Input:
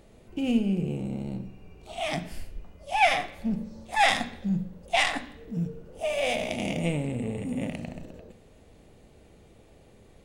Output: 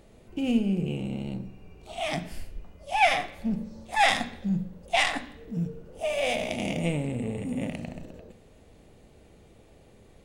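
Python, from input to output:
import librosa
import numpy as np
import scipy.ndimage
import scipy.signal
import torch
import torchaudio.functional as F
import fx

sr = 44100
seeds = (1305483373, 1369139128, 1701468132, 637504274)

y = fx.peak_eq(x, sr, hz=2900.0, db=10.0, octaves=0.61, at=(0.86, 1.34))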